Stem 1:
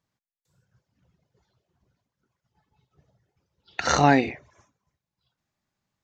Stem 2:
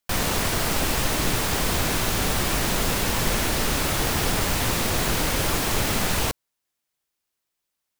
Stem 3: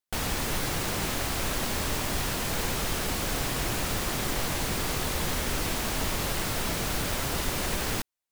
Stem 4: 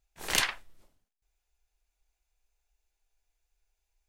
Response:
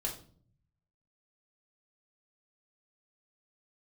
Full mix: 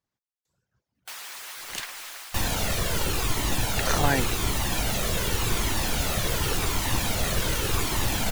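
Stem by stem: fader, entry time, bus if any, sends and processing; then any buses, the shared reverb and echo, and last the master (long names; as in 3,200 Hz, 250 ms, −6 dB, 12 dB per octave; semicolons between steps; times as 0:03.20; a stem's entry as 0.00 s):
+1.0 dB, 0.00 s, no send, speech leveller
+2.0 dB, 2.25 s, send −7 dB, flanger whose copies keep moving one way falling 0.88 Hz
−2.5 dB, 0.95 s, no send, high-pass filter 1,100 Hz 12 dB per octave; automatic ducking −8 dB, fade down 0.90 s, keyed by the first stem
−6.5 dB, 1.40 s, no send, no processing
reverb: on, pre-delay 3 ms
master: harmonic and percussive parts rebalanced harmonic −11 dB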